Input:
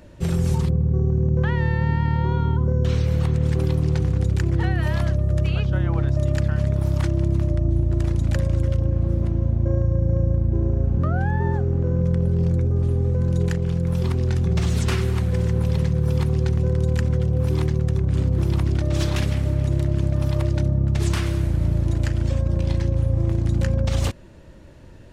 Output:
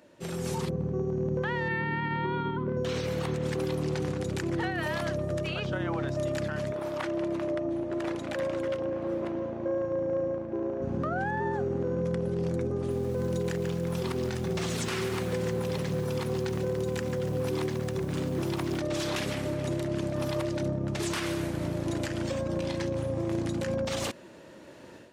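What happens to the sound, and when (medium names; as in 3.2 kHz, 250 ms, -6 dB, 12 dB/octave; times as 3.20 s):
1.68–2.77 s: cabinet simulation 110–3800 Hz, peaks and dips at 330 Hz +3 dB, 490 Hz -7 dB, 760 Hz -9 dB, 2.2 kHz +6 dB
6.72–10.82 s: tone controls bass -14 dB, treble -11 dB
12.76–18.81 s: bit-crushed delay 142 ms, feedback 35%, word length 7-bit, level -12.5 dB
whole clip: level rider; high-pass 270 Hz 12 dB/octave; peak limiter -15.5 dBFS; trim -6.5 dB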